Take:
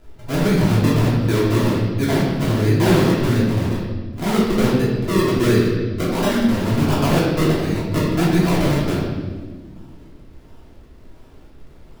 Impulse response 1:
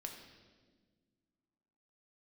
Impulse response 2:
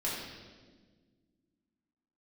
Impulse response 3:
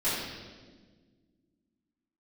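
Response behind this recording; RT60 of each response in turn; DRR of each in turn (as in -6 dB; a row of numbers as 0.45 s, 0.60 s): 2; 1.6 s, 1.5 s, 1.5 s; 2.0 dB, -7.5 dB, -15.0 dB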